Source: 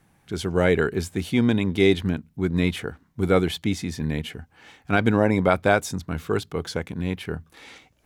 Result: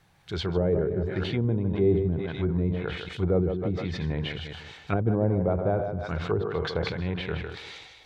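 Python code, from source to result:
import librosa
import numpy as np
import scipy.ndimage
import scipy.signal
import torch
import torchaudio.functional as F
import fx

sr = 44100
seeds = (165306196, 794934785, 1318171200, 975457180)

y = fx.reverse_delay(x, sr, ms=206, wet_db=-11.5)
y = fx.graphic_eq_15(y, sr, hz=(250, 4000, 10000), db=(-12, 7, -7))
y = fx.echo_thinned(y, sr, ms=154, feedback_pct=21, hz=150.0, wet_db=-8)
y = fx.env_lowpass_down(y, sr, base_hz=450.0, full_db=-21.0)
y = fx.sustainer(y, sr, db_per_s=50.0)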